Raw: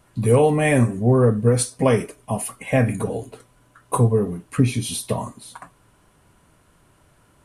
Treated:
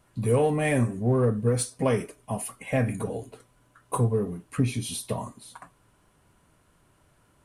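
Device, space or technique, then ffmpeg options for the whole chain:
parallel distortion: -filter_complex "[0:a]asplit=2[link_01][link_02];[link_02]asoftclip=type=hard:threshold=-19.5dB,volume=-13.5dB[link_03];[link_01][link_03]amix=inputs=2:normalize=0,volume=-7.5dB"

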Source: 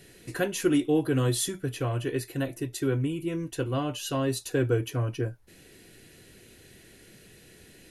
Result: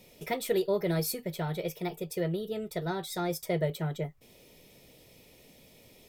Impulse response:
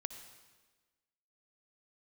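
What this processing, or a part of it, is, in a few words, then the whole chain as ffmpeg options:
nightcore: -af "asetrate=57330,aresample=44100,volume=-4dB"

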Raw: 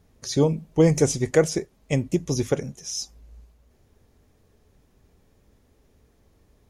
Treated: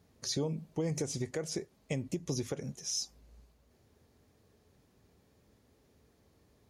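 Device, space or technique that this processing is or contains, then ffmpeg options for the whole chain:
broadcast voice chain: -af "highpass=82,deesser=0.4,acompressor=threshold=-23dB:ratio=5,equalizer=frequency=4400:width_type=o:width=0.3:gain=4,alimiter=limit=-20dB:level=0:latency=1:release=155,volume=-4dB"

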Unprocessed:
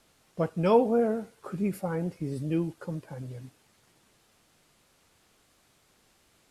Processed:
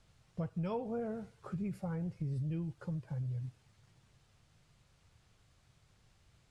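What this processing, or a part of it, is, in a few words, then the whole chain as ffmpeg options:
jukebox: -af "lowpass=7700,lowshelf=frequency=180:width_type=q:width=1.5:gain=12,acompressor=threshold=-30dB:ratio=3,volume=-6.5dB"

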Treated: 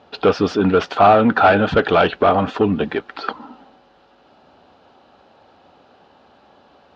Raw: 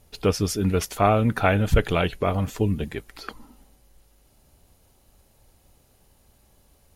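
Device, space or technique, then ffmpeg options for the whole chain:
overdrive pedal into a guitar cabinet: -filter_complex "[0:a]asplit=2[link_01][link_02];[link_02]highpass=frequency=720:poles=1,volume=23dB,asoftclip=type=tanh:threshold=-4.5dB[link_03];[link_01][link_03]amix=inputs=2:normalize=0,lowpass=frequency=1700:poles=1,volume=-6dB,highpass=100,equalizer=frequency=120:width_type=q:width=4:gain=-6,equalizer=frequency=260:width_type=q:width=4:gain=4,equalizer=frequency=770:width_type=q:width=4:gain=4,equalizer=frequency=1400:width_type=q:width=4:gain=4,equalizer=frequency=2100:width_type=q:width=4:gain=-8,lowpass=frequency=4200:width=0.5412,lowpass=frequency=4200:width=1.3066,volume=1dB"

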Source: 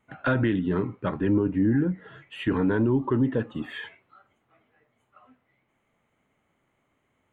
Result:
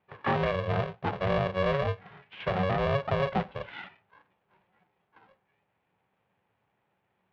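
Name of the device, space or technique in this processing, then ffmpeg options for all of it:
ring modulator pedal into a guitar cabinet: -af "aeval=exprs='val(0)*sgn(sin(2*PI*280*n/s))':channel_layout=same,highpass=82,equalizer=frequency=110:width_type=q:width=4:gain=8,equalizer=frequency=190:width_type=q:width=4:gain=7,equalizer=frequency=820:width_type=q:width=4:gain=7,lowpass=frequency=3400:width=0.5412,lowpass=frequency=3400:width=1.3066,volume=-5dB"

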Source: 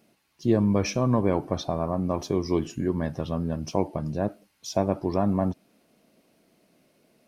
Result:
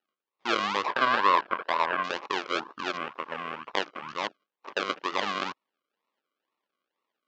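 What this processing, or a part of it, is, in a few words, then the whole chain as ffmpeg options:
circuit-bent sampling toy: -filter_complex "[0:a]acrusher=samples=39:mix=1:aa=0.000001:lfo=1:lforange=23.4:lforate=2.1,highpass=590,equalizer=frequency=680:width_type=q:width=4:gain=-8,equalizer=frequency=1100:width_type=q:width=4:gain=8,equalizer=frequency=3000:width_type=q:width=4:gain=5,lowpass=frequency=5100:width=0.5412,lowpass=frequency=5100:width=1.3066,afwtdn=0.0112,asettb=1/sr,asplit=3[link_01][link_02][link_03];[link_01]atrim=end=0.864[link_04];[link_02]atrim=start=0.86:end=2.03,asetpts=PTS-STARTPTS,afade=type=in:duration=0.004:curve=qsin,afade=type=out:start_time=1.166:duration=0.004:curve=qsin,equalizer=frequency=630:width_type=o:width=0.33:gain=5,equalizer=frequency=1000:width_type=o:width=0.33:gain=9,equalizer=frequency=1600:width_type=o:width=0.33:gain=9,equalizer=frequency=6300:width_type=o:width=0.33:gain=-11[link_05];[link_03]atrim=start=2.026[link_06];[link_04][link_05]acrossfade=duration=0.004:curve1=hsin:curve2=qsin[link_07];[link_07][link_06]acrossfade=duration=0.004:curve1=qsin:curve2=hsin"

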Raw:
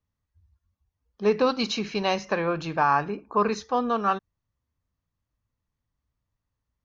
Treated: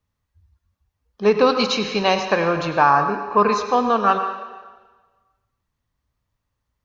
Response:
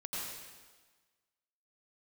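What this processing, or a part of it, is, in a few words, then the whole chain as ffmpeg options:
filtered reverb send: -filter_complex "[0:a]asplit=2[link_01][link_02];[link_02]highpass=370,lowpass=6300[link_03];[1:a]atrim=start_sample=2205[link_04];[link_03][link_04]afir=irnorm=-1:irlink=0,volume=-6dB[link_05];[link_01][link_05]amix=inputs=2:normalize=0,asettb=1/sr,asplit=3[link_06][link_07][link_08];[link_06]atrim=end=2.894[link_09];[link_07]atrim=start=2.89:end=3.31,asetpts=PTS-STARTPTS,afade=type=in:duration=0.004:curve=qsin,afade=type=out:start_time=0.416:duration=0.004:curve=qsin,equalizer=frequency=2600:width_type=o:width=1.2:gain=-7[link_10];[link_08]atrim=start=3.306[link_11];[link_09][link_10]acrossfade=duration=0.004:curve1=hsin:curve2=qsin[link_12];[link_12][link_11]acrossfade=duration=0.004:curve1=qsin:curve2=hsin,volume=5dB"

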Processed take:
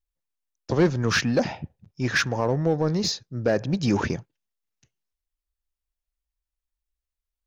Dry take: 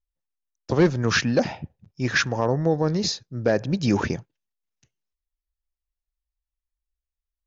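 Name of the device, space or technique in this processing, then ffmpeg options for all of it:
parallel distortion: -filter_complex "[0:a]asplit=2[link_01][link_02];[link_02]asoftclip=type=hard:threshold=-22dB,volume=-7.5dB[link_03];[link_01][link_03]amix=inputs=2:normalize=0,volume=-3dB"

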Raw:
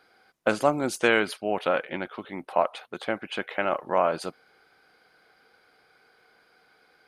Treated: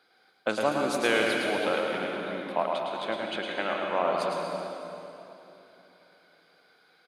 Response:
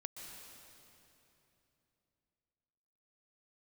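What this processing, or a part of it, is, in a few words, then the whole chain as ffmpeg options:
PA in a hall: -filter_complex "[0:a]highpass=140,equalizer=frequency=3700:width_type=o:width=0.49:gain=7.5,aecho=1:1:108:0.562[link_01];[1:a]atrim=start_sample=2205[link_02];[link_01][link_02]afir=irnorm=-1:irlink=0"

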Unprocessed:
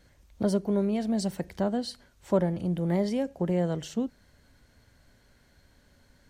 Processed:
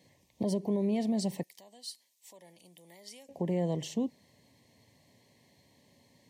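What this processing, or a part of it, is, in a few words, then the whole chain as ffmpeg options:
PA system with an anti-feedback notch: -filter_complex "[0:a]highpass=frequency=110:width=0.5412,highpass=frequency=110:width=1.3066,asuperstop=centerf=1400:order=8:qfactor=2.1,alimiter=limit=-22.5dB:level=0:latency=1:release=85,asettb=1/sr,asplit=3[link_01][link_02][link_03];[link_01]atrim=end=1.434[link_04];[link_02]atrim=start=1.43:end=3.29,asetpts=PTS-STARTPTS,afade=type=in:duration=0.004:curve=qsin,afade=type=out:start_time=1.856:duration=0.004:curve=qsin,aderivative[link_05];[link_03]atrim=start=3.286[link_06];[link_04][link_05]acrossfade=duration=0.004:curve1=hsin:curve2=qsin[link_07];[link_07][link_06]acrossfade=duration=0.004:curve1=qsin:curve2=hsin"

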